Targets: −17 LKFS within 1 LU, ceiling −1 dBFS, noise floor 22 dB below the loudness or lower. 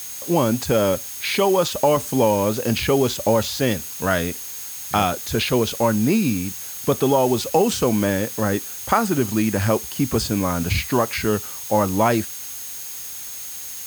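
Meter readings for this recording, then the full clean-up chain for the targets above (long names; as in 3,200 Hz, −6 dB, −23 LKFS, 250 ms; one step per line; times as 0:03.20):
interfering tone 6,500 Hz; level of the tone −38 dBFS; background noise floor −33 dBFS; target noise floor −43 dBFS; integrated loudness −21.0 LKFS; sample peak −3.0 dBFS; target loudness −17.0 LKFS
→ notch filter 6,500 Hz, Q 30
noise reduction from a noise print 10 dB
level +4 dB
brickwall limiter −1 dBFS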